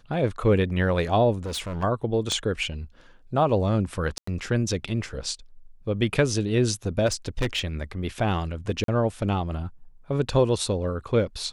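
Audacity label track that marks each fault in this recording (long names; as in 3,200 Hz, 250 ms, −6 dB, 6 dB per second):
1.450000	1.840000	clipping −27 dBFS
2.320000	2.320000	click −15 dBFS
4.180000	4.270000	drop-out 94 ms
7.060000	7.610000	clipping −20.5 dBFS
8.840000	8.880000	drop-out 43 ms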